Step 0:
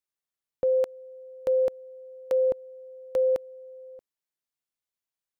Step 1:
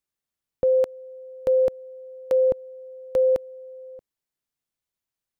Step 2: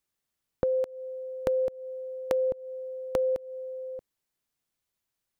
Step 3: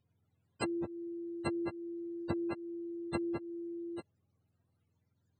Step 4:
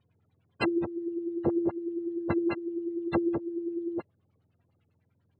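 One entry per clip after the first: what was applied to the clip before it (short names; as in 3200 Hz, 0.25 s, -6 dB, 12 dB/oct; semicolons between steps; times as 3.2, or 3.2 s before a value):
low shelf 280 Hz +8 dB; gain +2 dB
compressor 12:1, threshold -28 dBFS, peak gain reduction 11 dB; gain +3.5 dB
spectrum mirrored in octaves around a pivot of 420 Hz; treble ducked by the level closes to 2400 Hz, closed at -26 dBFS; spectral compressor 2:1; gain -3.5 dB
LFO low-pass sine 10 Hz 390–3400 Hz; gain +5.5 dB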